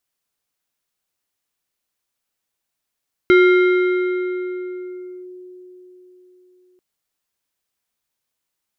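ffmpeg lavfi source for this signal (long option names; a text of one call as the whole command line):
ffmpeg -f lavfi -i "aevalsrc='0.447*pow(10,-3*t/4.43)*sin(2*PI*364*t+0.67*clip(1-t/1.97,0,1)*sin(2*PI*4.83*364*t))':duration=3.49:sample_rate=44100" out.wav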